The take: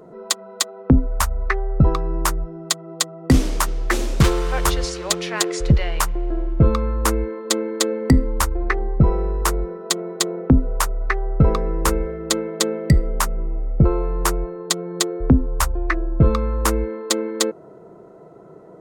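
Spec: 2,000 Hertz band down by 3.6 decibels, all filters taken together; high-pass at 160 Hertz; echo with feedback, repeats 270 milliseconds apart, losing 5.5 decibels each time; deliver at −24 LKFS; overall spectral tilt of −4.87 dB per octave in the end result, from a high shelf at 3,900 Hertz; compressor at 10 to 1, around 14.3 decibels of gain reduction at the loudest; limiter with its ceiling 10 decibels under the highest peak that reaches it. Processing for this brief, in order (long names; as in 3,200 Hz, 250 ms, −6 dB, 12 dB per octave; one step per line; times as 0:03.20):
high-pass filter 160 Hz
parametric band 2,000 Hz −3 dB
high-shelf EQ 3,900 Hz −7 dB
downward compressor 10 to 1, threshold −27 dBFS
brickwall limiter −21.5 dBFS
repeating echo 270 ms, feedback 53%, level −5.5 dB
level +9.5 dB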